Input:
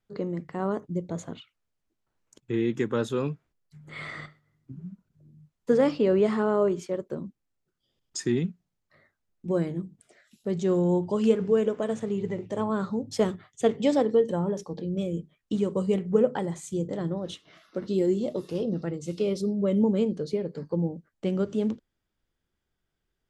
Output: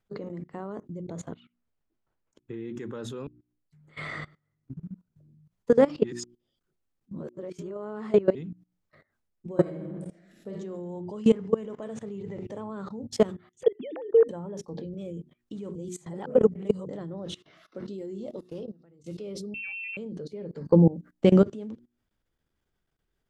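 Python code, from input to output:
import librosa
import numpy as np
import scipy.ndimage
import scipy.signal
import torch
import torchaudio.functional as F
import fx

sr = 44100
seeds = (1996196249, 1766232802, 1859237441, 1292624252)

y = fx.lowpass(x, sr, hz=3500.0, slope=6, at=(1.32, 2.76))
y = fx.reverb_throw(y, sr, start_s=9.5, length_s=1.03, rt60_s=0.95, drr_db=-2.0)
y = fx.comb(y, sr, ms=1.0, depth=0.31, at=(11.21, 11.82))
y = fx.band_squash(y, sr, depth_pct=40, at=(12.38, 12.89))
y = fx.sine_speech(y, sr, at=(13.63, 14.29))
y = fx.freq_invert(y, sr, carrier_hz=2900, at=(19.54, 19.97))
y = fx.edit(y, sr, fx.fade_in_span(start_s=3.27, length_s=0.83),
    fx.reverse_span(start_s=6.04, length_s=2.31),
    fx.reverse_span(start_s=15.75, length_s=1.11),
    fx.fade_out_to(start_s=18.14, length_s=0.9, curve='qua', floor_db=-20.0),
    fx.clip_gain(start_s=20.61, length_s=0.81, db=8.0), tone=tone)
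y = fx.high_shelf(y, sr, hz=2000.0, db=-4.0)
y = fx.hum_notches(y, sr, base_hz=60, count=6)
y = fx.level_steps(y, sr, step_db=21)
y = y * 10.0 ** (5.5 / 20.0)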